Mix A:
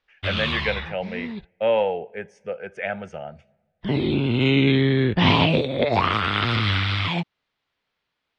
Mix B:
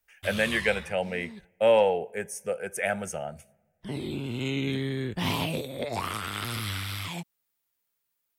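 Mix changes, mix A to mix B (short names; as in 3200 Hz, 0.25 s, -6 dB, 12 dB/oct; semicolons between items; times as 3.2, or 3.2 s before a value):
background -11.5 dB; master: remove LPF 4000 Hz 24 dB/oct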